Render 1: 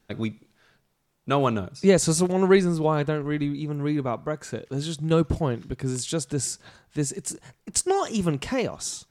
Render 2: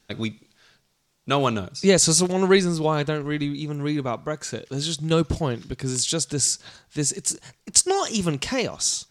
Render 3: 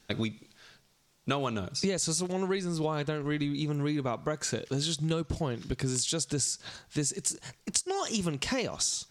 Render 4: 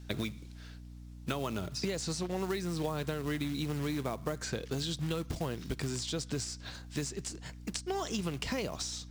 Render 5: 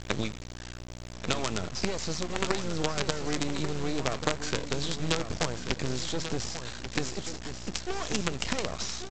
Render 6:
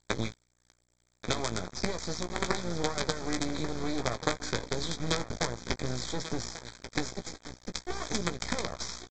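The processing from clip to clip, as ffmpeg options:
ffmpeg -i in.wav -af "equalizer=frequency=5200:width=0.58:gain=10" out.wav
ffmpeg -i in.wav -af "acompressor=threshold=-28dB:ratio=12,volume=1.5dB" out.wav
ffmpeg -i in.wav -filter_complex "[0:a]acrusher=bits=4:mode=log:mix=0:aa=0.000001,acrossover=split=560|5000[link_01][link_02][link_03];[link_01]acompressor=threshold=-31dB:ratio=4[link_04];[link_02]acompressor=threshold=-35dB:ratio=4[link_05];[link_03]acompressor=threshold=-46dB:ratio=4[link_06];[link_04][link_05][link_06]amix=inputs=3:normalize=0,aeval=exprs='val(0)+0.00562*(sin(2*PI*60*n/s)+sin(2*PI*2*60*n/s)/2+sin(2*PI*3*60*n/s)/3+sin(2*PI*4*60*n/s)/4+sin(2*PI*5*60*n/s)/5)':channel_layout=same,volume=-1.5dB" out.wav
ffmpeg -i in.wav -af "aresample=16000,acrusher=bits=5:dc=4:mix=0:aa=0.000001,aresample=44100,aecho=1:1:1138:0.335,volume=7dB" out.wav
ffmpeg -i in.wav -filter_complex "[0:a]aresample=16000,aeval=exprs='sgn(val(0))*max(abs(val(0))-0.0178,0)':channel_layout=same,aresample=44100,asuperstop=centerf=2800:order=4:qfactor=3.6,asplit=2[link_01][link_02];[link_02]adelay=17,volume=-9dB[link_03];[link_01][link_03]amix=inputs=2:normalize=0" out.wav

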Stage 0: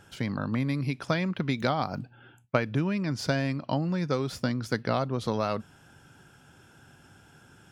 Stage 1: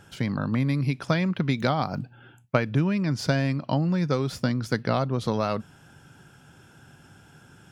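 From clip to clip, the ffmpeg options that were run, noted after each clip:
ffmpeg -i in.wav -af "equalizer=frequency=150:width=1.5:gain=3.5,volume=2dB" out.wav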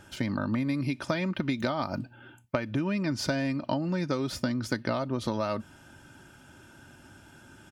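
ffmpeg -i in.wav -af "aecho=1:1:3.3:0.53,acompressor=threshold=-25dB:ratio=5" out.wav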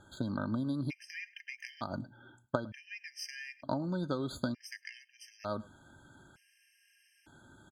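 ffmpeg -i in.wav -filter_complex "[0:a]asplit=2[link_01][link_02];[link_02]adelay=105,volume=-21dB,highshelf=frequency=4000:gain=-2.36[link_03];[link_01][link_03]amix=inputs=2:normalize=0,aeval=exprs='0.316*(cos(1*acos(clip(val(0)/0.316,-1,1)))-cos(1*PI/2))+0.0501*(cos(3*acos(clip(val(0)/0.316,-1,1)))-cos(3*PI/2))':channel_layout=same,afftfilt=real='re*gt(sin(2*PI*0.55*pts/sr)*(1-2*mod(floor(b*sr/1024/1600),2)),0)':imag='im*gt(sin(2*PI*0.55*pts/sr)*(1-2*mod(floor(b*sr/1024/1600),2)),0)':win_size=1024:overlap=0.75" out.wav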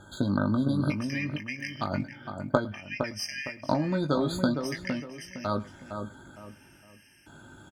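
ffmpeg -i in.wav -filter_complex "[0:a]asplit=2[link_01][link_02];[link_02]adelay=20,volume=-8dB[link_03];[link_01][link_03]amix=inputs=2:normalize=0,asplit=2[link_04][link_05];[link_05]adelay=460,lowpass=frequency=1600:poles=1,volume=-6dB,asplit=2[link_06][link_07];[link_07]adelay=460,lowpass=frequency=1600:poles=1,volume=0.33,asplit=2[link_08][link_09];[link_09]adelay=460,lowpass=frequency=1600:poles=1,volume=0.33,asplit=2[link_10][link_11];[link_11]adelay=460,lowpass=frequency=1600:poles=1,volume=0.33[link_12];[link_06][link_08][link_10][link_12]amix=inputs=4:normalize=0[link_13];[link_04][link_13]amix=inputs=2:normalize=0,volume=7.5dB" out.wav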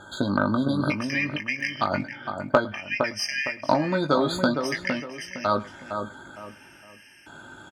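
ffmpeg -i in.wav -filter_complex "[0:a]asplit=2[link_01][link_02];[link_02]highpass=frequency=720:poles=1,volume=12dB,asoftclip=type=tanh:threshold=-3.5dB[link_03];[link_01][link_03]amix=inputs=2:normalize=0,lowpass=frequency=3600:poles=1,volume=-6dB,volume=2.5dB" out.wav

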